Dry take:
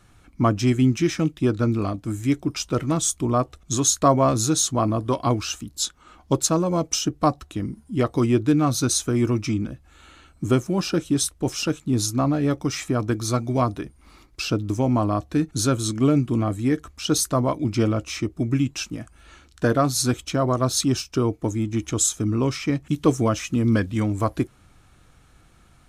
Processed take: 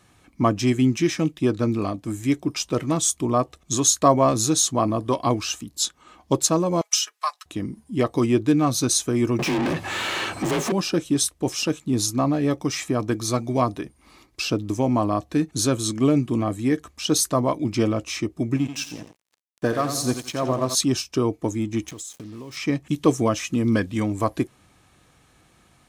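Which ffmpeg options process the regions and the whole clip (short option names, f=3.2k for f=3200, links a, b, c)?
-filter_complex "[0:a]asettb=1/sr,asplit=3[a][b][c];[a]atrim=end=6.814[d];[b]atrim=start=6.81:end=7.46,asetpts=PTS-STARTPTS,afade=t=in:d=0.004:c=qsin,afade=t=out:st=0.646:d=0.004:c=qsin,highpass=f=1.1k:w=0.5412,highpass=f=1.1k:w=1.3066,aecho=1:1:4.8:0.68,atrim=end_sample=28665[e];[c]atrim=start=7.456[f];[d][e]acrossfade=d=0.004:c1=hsin:c2=qsin[g];[g][f]acrossfade=d=0.004:c1=qsin:c2=hsin,asettb=1/sr,asplit=3[h][i][j];[h]atrim=end=9.394[k];[i]atrim=start=9.39:end=10.72,asetpts=PTS-STARTPTS,afade=t=in:d=0.004:c=qsin,afade=t=out:st=1.326:d=0.004:c=qsin,acompressor=threshold=-29dB:ratio=2.5:attack=3.2:release=140:knee=1:detection=peak,afreqshift=32,asplit=2[l][m];[m]highpass=f=720:p=1,volume=42dB,asoftclip=type=tanh:threshold=-16dB[n];[l][n]amix=inputs=2:normalize=0,lowpass=f=2.4k:p=1,volume=-6dB[o];[j]atrim=start=10.716[p];[k][o]acrossfade=d=0.004:c1=hsin:c2=qsin[q];[q][p]acrossfade=d=0.004:c1=qsin:c2=hsin,asettb=1/sr,asplit=3[r][s][t];[r]atrim=end=18.564[u];[s]atrim=start=18.56:end=20.75,asetpts=PTS-STARTPTS,afade=t=in:d=0.004:c=qsin,afade=t=out:st=2.186:d=0.004:c=qsin,aecho=1:1:86|172|258|344|430:0.398|0.179|0.0806|0.0363|0.0163,atrim=end_sample=96579,acrossover=split=1000[v][w];[v]aeval=exprs='val(0)*(1-0.5/2+0.5/2*cos(2*PI*2*n/s))':c=same[x];[w]aeval=exprs='val(0)*(1-0.5/2-0.5/2*cos(2*PI*2*n/s))':c=same[y];[x][y]amix=inputs=2:normalize=0,aeval=exprs='sgn(val(0))*max(abs(val(0))-0.00841,0)':c=same[z];[t]atrim=start=20.746[aa];[u][z]acrossfade=d=0.004:c1=hsin:c2=qsin[ab];[ab][aa]acrossfade=d=0.004:c1=qsin:c2=hsin,asettb=1/sr,asplit=3[ac][ad][ae];[ac]atrim=end=21.884[af];[ad]atrim=start=21.88:end=22.57,asetpts=PTS-STARTPTS,afade=t=in:d=0.004:c=qsin,afade=t=out:st=0.686:d=0.004:c=qsin,acrusher=bits=5:mix=0:aa=0.5,acompressor=threshold=-33dB:ratio=20:attack=3.2:release=140:knee=1:detection=peak[ag];[ae]atrim=start=22.566[ah];[af][ag]acrossfade=d=0.004:c1=hsin:c2=qsin[ai];[ai][ah]acrossfade=d=0.004:c1=qsin:c2=hsin,highpass=f=170:p=1,bandreject=f=1.4k:w=7.1,volume=1.5dB"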